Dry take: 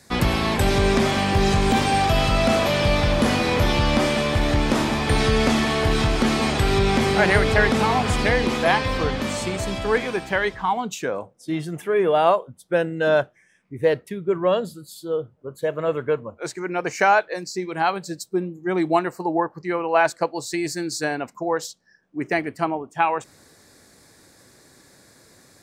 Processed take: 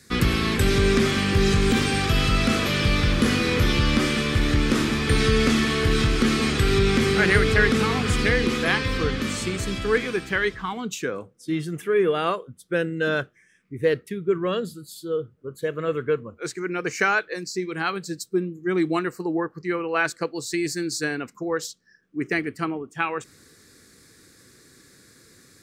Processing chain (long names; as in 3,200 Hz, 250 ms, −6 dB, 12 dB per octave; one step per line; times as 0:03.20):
flat-topped bell 750 Hz −12 dB 1 octave